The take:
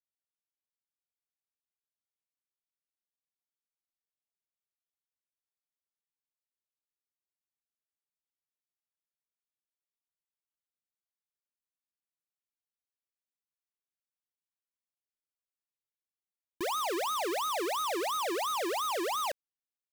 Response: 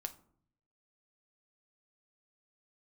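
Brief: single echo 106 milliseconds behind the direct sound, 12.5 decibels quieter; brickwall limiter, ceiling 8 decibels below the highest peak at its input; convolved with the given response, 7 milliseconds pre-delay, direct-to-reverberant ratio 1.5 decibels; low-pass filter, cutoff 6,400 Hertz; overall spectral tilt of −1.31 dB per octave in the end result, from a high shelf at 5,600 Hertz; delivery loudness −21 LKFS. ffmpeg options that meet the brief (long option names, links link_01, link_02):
-filter_complex "[0:a]lowpass=6400,highshelf=frequency=5600:gain=-3.5,alimiter=level_in=16dB:limit=-24dB:level=0:latency=1,volume=-16dB,aecho=1:1:106:0.237,asplit=2[link_01][link_02];[1:a]atrim=start_sample=2205,adelay=7[link_03];[link_02][link_03]afir=irnorm=-1:irlink=0,volume=0.5dB[link_04];[link_01][link_04]amix=inputs=2:normalize=0,volume=17.5dB"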